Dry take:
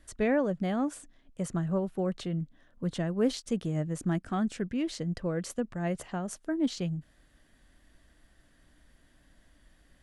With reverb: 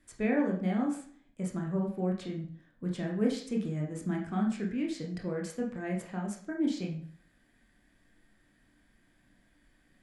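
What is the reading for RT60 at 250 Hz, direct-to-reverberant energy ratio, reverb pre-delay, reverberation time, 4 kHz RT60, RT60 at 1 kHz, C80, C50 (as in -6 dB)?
0.60 s, 0.0 dB, 18 ms, 0.50 s, 0.45 s, 0.55 s, 11.0 dB, 7.0 dB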